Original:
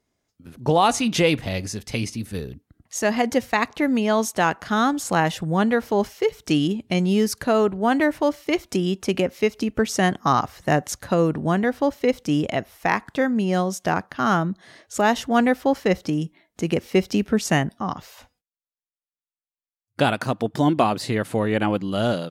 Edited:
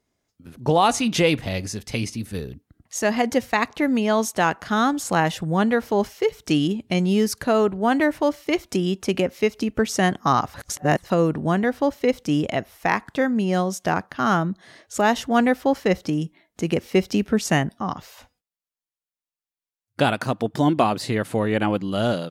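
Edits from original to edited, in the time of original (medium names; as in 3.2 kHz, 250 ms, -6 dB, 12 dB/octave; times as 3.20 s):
10.54–11.10 s: reverse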